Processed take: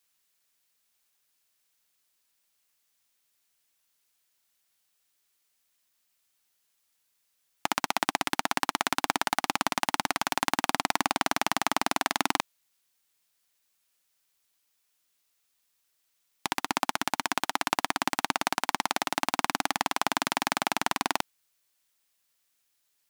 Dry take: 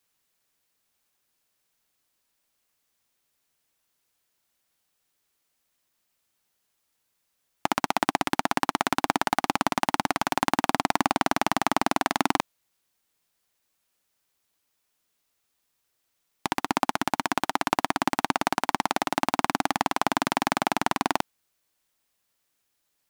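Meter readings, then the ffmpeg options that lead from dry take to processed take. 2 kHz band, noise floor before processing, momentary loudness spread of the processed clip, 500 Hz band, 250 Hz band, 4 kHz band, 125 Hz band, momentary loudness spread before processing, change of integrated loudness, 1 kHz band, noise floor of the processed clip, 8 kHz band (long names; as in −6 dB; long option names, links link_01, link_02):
−1.0 dB, −76 dBFS, 3 LU, −5.0 dB, −6.5 dB, +1.0 dB, −7.0 dB, 3 LU, −2.5 dB, −3.5 dB, −75 dBFS, +2.0 dB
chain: -af "tiltshelf=frequency=1200:gain=-4.5,volume=-2.5dB"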